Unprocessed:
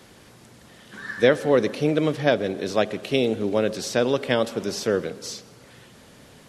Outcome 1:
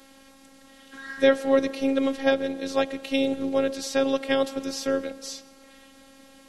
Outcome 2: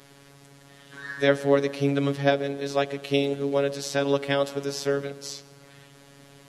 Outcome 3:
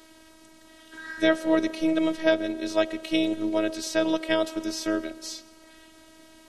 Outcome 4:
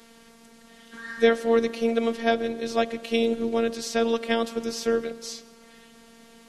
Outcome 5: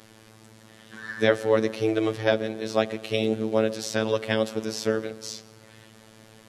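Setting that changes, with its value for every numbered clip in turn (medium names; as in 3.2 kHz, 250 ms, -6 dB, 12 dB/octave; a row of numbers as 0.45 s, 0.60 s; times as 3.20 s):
robot voice, frequency: 270 Hz, 140 Hz, 320 Hz, 230 Hz, 110 Hz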